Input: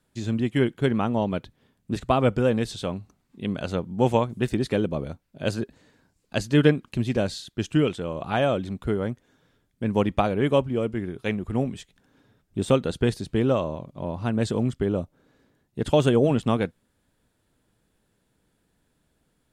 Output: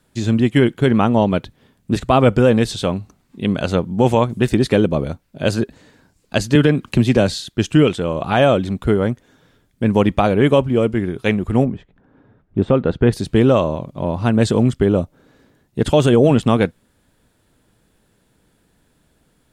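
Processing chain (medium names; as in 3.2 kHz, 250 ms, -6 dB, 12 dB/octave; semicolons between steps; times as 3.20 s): 11.64–13.12 s: low-pass 1.1 kHz -> 2 kHz 12 dB/octave; loudness maximiser +12 dB; 6.55–7.33 s: three bands compressed up and down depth 70%; trim -2.5 dB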